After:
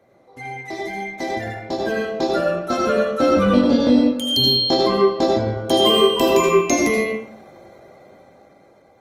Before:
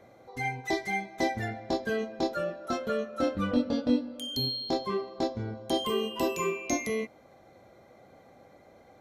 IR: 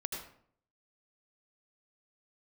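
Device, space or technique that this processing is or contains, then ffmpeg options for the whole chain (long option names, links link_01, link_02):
far-field microphone of a smart speaker: -filter_complex "[1:a]atrim=start_sample=2205[link_01];[0:a][link_01]afir=irnorm=-1:irlink=0,highpass=frequency=95:poles=1,dynaudnorm=framelen=830:gausssize=5:maxgain=14dB" -ar 48000 -c:a libopus -b:a 24k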